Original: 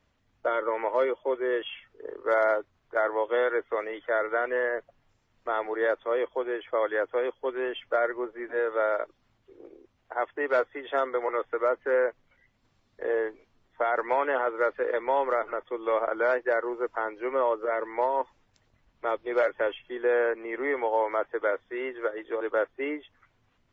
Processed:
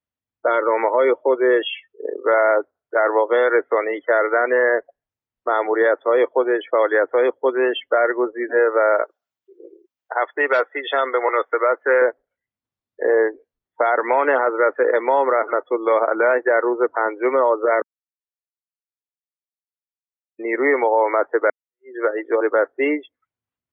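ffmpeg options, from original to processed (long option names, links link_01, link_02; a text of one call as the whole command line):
ffmpeg -i in.wav -filter_complex "[0:a]asettb=1/sr,asplit=3[link_01][link_02][link_03];[link_01]atrim=end=9.024[link_04];[link_02]atrim=start=9.02:end=12.02,asetpts=PTS-STARTPTS,afade=type=in:duration=0.004:curve=qsin,afade=type=out:start_time=2.996:duration=0.004:curve=qsin,aemphasis=mode=production:type=riaa[link_05];[link_03]atrim=start=12.016[link_06];[link_04][link_05]acrossfade=duration=0.004:curve1=hsin:curve2=qsin[link_07];[link_07][link_06]acrossfade=duration=0.004:curve1=qsin:curve2=hsin,asplit=4[link_08][link_09][link_10][link_11];[link_08]atrim=end=17.82,asetpts=PTS-STARTPTS,afade=type=out:start_time=17.816:duration=0.004:curve=hsin[link_12];[link_09]atrim=start=17.82:end=20.39,asetpts=PTS-STARTPTS,volume=0[link_13];[link_10]atrim=start=20.39:end=21.5,asetpts=PTS-STARTPTS,afade=type=in:duration=0.004:curve=hsin,afade=type=out:start_time=1.106:duration=0.004:curve=hsin[link_14];[link_11]atrim=start=21.5,asetpts=PTS-STARTPTS,afade=type=in:duration=0.46:curve=exp[link_15];[link_12][link_13][link_14][link_15]concat=n=4:v=0:a=1,afftdn=noise_reduction=34:noise_floor=-42,highpass=66,alimiter=level_in=19dB:limit=-1dB:release=50:level=0:latency=1,volume=-7dB" out.wav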